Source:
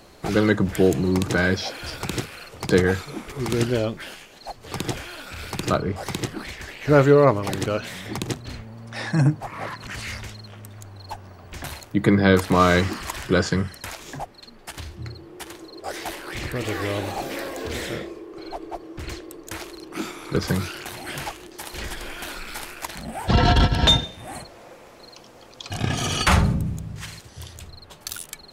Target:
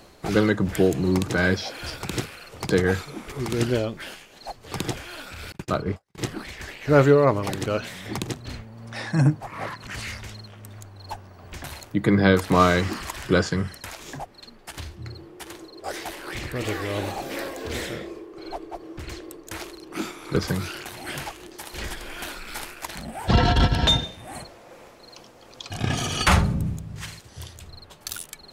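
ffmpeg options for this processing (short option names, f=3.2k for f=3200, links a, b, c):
-filter_complex "[0:a]tremolo=f=2.7:d=0.31,asettb=1/sr,asplit=3[a][b][c];[a]atrim=end=5.524[d];[b]atrim=start=5.52:end=6.18,asetpts=PTS-STARTPTS,afade=t=in:d=0.004:c=qsin,afade=t=out:st=0.656:d=0.004:c=qsin,agate=range=-46dB:threshold=-26dB:ratio=16:detection=peak[e];[c]atrim=start=6.176[f];[d][e]acrossfade=d=0.004:c1=hsin:c2=qsin[g];[g][f]acrossfade=d=0.004:c1=qsin:c2=hsin"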